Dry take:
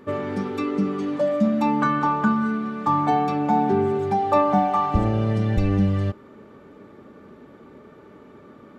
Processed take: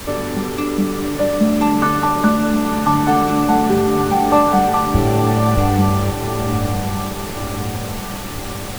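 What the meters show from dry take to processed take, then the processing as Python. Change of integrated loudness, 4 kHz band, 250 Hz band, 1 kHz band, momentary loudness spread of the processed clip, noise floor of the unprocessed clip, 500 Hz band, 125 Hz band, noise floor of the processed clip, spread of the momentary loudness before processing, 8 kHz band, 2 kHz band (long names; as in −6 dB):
+4.5 dB, +14.5 dB, +6.0 dB, +5.5 dB, 10 LU, −48 dBFS, +5.5 dB, +6.0 dB, −27 dBFS, 6 LU, can't be measured, +7.5 dB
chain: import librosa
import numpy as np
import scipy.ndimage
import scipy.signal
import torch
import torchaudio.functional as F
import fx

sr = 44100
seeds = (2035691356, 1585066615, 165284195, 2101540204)

y = fx.dmg_noise_colour(x, sr, seeds[0], colour='pink', level_db=-35.0)
y = fx.echo_diffused(y, sr, ms=1042, feedback_pct=53, wet_db=-6.0)
y = y * 10.0 ** (4.5 / 20.0)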